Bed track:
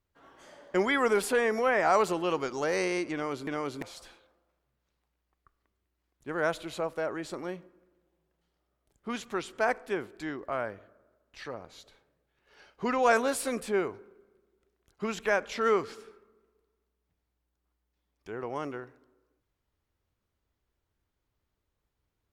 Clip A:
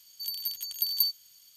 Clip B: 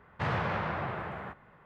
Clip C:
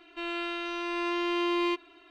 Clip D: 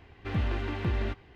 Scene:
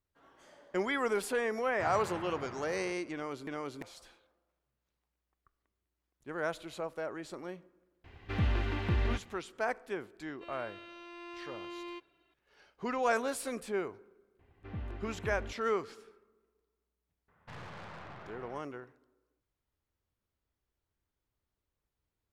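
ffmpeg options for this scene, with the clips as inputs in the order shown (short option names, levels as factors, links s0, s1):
-filter_complex "[2:a]asplit=2[s0][s1];[4:a]asplit=2[s2][s3];[0:a]volume=0.501[s4];[s2]equalizer=f=360:w=0.43:g=-2.5[s5];[s3]lowpass=f=1600:p=1[s6];[s1]aeval=exprs='(tanh(63.1*val(0)+0.6)-tanh(0.6))/63.1':c=same[s7];[s0]atrim=end=1.65,asetpts=PTS-STARTPTS,volume=0.299,afade=t=in:d=0.004:c=hsin,afade=t=out:st=1.646:d=0.004:c=hsin,adelay=1600[s8];[s5]atrim=end=1.35,asetpts=PTS-STARTPTS,afade=t=in:d=0.004:c=hsin,afade=t=out:st=1.346:d=0.004:c=hsin,adelay=8040[s9];[3:a]atrim=end=2.1,asetpts=PTS-STARTPTS,volume=0.158,afade=t=in:d=0.004:c=hsin,afade=t=out:st=2.096:d=0.004:c=hsin,adelay=10240[s10];[s6]atrim=end=1.35,asetpts=PTS-STARTPTS,volume=0.266,afade=t=in:d=0.004:c=hsin,afade=t=out:st=1.346:d=0.004:c=hsin,adelay=14390[s11];[s7]atrim=end=1.65,asetpts=PTS-STARTPTS,volume=0.376,afade=t=in:d=0.004:c=hsin,afade=t=out:st=1.646:d=0.004:c=hsin,adelay=17280[s12];[s4][s8][s9][s10][s11][s12]amix=inputs=6:normalize=0"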